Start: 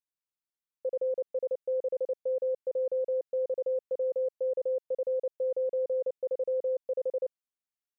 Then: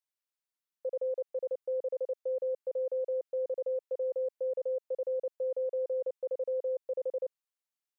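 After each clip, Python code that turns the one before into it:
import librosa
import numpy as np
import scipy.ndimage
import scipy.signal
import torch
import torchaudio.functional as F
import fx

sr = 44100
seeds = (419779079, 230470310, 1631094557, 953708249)

y = scipy.signal.sosfilt(scipy.signal.bessel(2, 490.0, 'highpass', norm='mag', fs=sr, output='sos'), x)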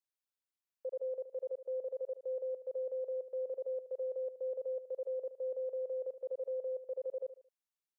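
y = fx.echo_feedback(x, sr, ms=74, feedback_pct=34, wet_db=-12.5)
y = F.gain(torch.from_numpy(y), -5.0).numpy()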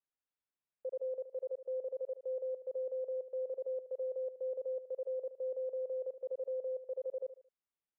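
y = fx.air_absorb(x, sr, metres=400.0)
y = F.gain(torch.from_numpy(y), 1.0).numpy()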